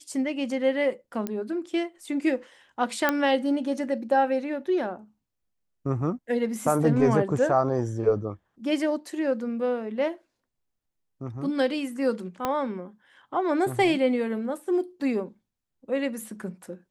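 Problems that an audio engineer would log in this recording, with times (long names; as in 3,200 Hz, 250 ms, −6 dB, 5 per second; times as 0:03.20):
0:01.27: click −16 dBFS
0:03.09: click −8 dBFS
0:12.45: click −12 dBFS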